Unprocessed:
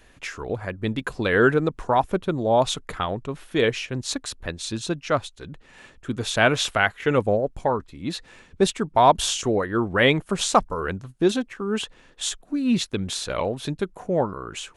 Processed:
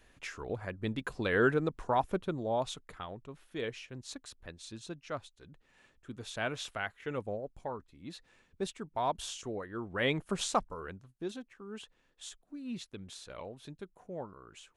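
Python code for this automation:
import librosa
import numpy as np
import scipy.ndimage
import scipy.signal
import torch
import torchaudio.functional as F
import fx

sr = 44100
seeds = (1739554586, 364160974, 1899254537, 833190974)

y = fx.gain(x, sr, db=fx.line((2.19, -9.0), (2.89, -16.5), (9.82, -16.5), (10.3, -8.5), (11.12, -19.0)))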